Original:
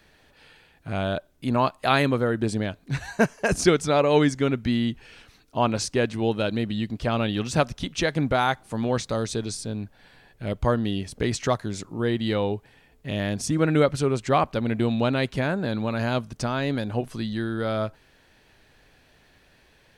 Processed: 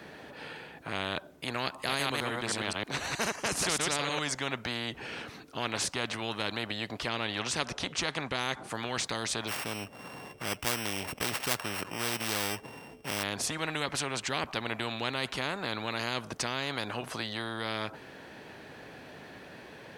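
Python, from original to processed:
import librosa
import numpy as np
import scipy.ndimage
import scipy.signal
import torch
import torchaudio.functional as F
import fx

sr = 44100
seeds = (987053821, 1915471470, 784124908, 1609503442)

y = fx.reverse_delay(x, sr, ms=105, wet_db=-2.5, at=(1.68, 4.19))
y = fx.lowpass(y, sr, hz=9900.0, slope=12, at=(7.08, 8.68))
y = fx.sample_sort(y, sr, block=16, at=(9.47, 13.22), fade=0.02)
y = scipy.signal.sosfilt(scipy.signal.butter(2, 160.0, 'highpass', fs=sr, output='sos'), y)
y = fx.high_shelf(y, sr, hz=2200.0, db=-11.5)
y = fx.spectral_comp(y, sr, ratio=4.0)
y = y * 10.0 ** (-2.5 / 20.0)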